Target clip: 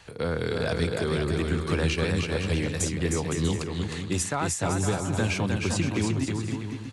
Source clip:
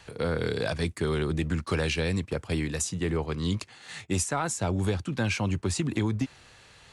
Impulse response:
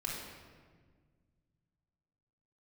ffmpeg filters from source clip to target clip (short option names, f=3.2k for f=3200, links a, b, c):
-af "aecho=1:1:310|511.5|642.5|727.6|782.9:0.631|0.398|0.251|0.158|0.1"